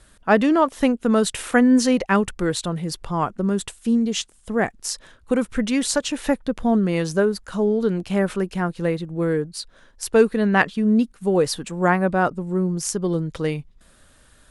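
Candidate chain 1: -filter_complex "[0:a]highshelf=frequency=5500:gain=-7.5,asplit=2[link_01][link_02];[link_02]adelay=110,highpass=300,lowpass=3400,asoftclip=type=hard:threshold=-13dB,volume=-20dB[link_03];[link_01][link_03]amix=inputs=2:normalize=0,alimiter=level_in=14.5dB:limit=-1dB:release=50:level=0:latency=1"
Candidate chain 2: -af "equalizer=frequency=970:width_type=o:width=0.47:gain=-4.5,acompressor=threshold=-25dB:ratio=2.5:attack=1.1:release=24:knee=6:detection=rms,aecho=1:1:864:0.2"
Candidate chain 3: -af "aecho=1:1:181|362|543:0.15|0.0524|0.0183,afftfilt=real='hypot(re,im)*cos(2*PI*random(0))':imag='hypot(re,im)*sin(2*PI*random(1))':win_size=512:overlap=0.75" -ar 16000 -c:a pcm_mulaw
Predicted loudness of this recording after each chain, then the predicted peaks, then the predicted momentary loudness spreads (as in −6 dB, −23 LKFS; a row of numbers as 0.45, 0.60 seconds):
−11.0, −28.0, −27.5 LKFS; −1.0, −12.5, −8.0 dBFS; 6, 6, 8 LU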